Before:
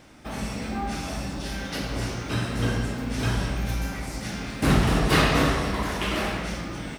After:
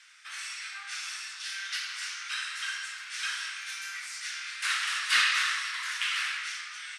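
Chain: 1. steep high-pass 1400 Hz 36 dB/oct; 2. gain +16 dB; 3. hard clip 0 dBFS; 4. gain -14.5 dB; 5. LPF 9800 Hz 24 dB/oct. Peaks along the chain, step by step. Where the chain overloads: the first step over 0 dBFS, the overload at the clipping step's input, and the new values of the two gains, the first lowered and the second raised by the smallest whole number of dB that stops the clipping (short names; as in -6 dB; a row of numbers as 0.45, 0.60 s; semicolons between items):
-11.5, +4.5, 0.0, -14.5, -13.5 dBFS; step 2, 4.5 dB; step 2 +11 dB, step 4 -9.5 dB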